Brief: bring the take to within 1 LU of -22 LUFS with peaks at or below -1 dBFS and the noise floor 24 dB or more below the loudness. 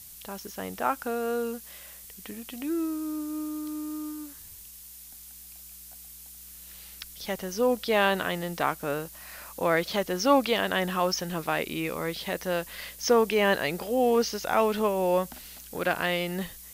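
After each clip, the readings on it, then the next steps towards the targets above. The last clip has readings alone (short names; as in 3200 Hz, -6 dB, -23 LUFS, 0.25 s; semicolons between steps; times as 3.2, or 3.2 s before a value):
noise floor -47 dBFS; noise floor target -52 dBFS; loudness -28.0 LUFS; peak -8.5 dBFS; loudness target -22.0 LUFS
-> noise print and reduce 6 dB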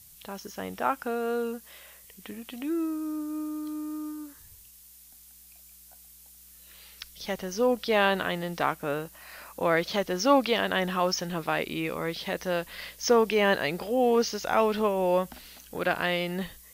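noise floor -53 dBFS; loudness -28.0 LUFS; peak -8.5 dBFS; loudness target -22.0 LUFS
-> gain +6 dB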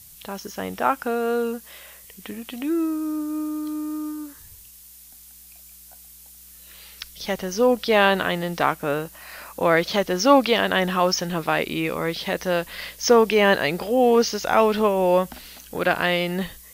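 loudness -22.0 LUFS; peak -2.5 dBFS; noise floor -47 dBFS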